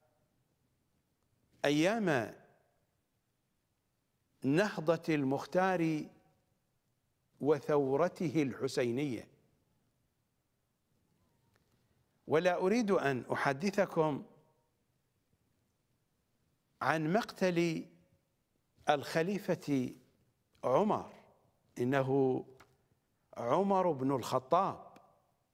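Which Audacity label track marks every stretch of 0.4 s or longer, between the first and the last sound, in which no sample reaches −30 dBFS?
2.250000	4.450000	silence
5.970000	7.430000	silence
9.140000	12.310000	silence
14.150000	16.820000	silence
17.770000	18.880000	silence
19.850000	20.640000	silence
20.980000	21.800000	silence
22.380000	23.400000	silence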